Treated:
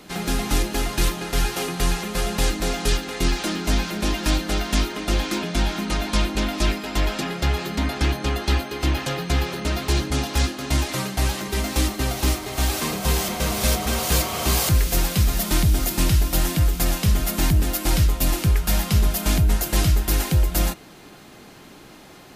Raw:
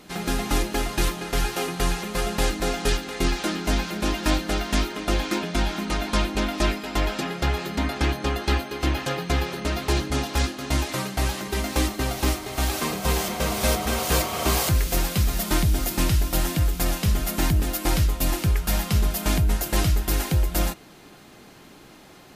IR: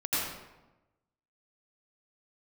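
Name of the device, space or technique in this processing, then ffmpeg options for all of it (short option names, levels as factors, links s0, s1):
one-band saturation: -filter_complex "[0:a]acrossover=split=230|2600[s0][s1][s2];[s1]asoftclip=type=tanh:threshold=0.0422[s3];[s0][s3][s2]amix=inputs=3:normalize=0,volume=1.41"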